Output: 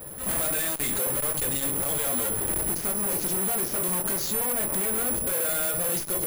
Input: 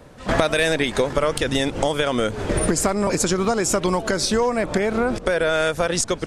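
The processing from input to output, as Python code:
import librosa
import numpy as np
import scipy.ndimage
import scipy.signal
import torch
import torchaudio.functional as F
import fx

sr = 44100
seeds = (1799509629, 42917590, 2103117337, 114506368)

y = fx.room_shoebox(x, sr, seeds[0], volume_m3=170.0, walls='furnished', distance_m=0.87)
y = fx.tube_stage(y, sr, drive_db=31.0, bias=0.35)
y = (np.kron(scipy.signal.resample_poly(y, 1, 4), np.eye(4)[0]) * 4)[:len(y)]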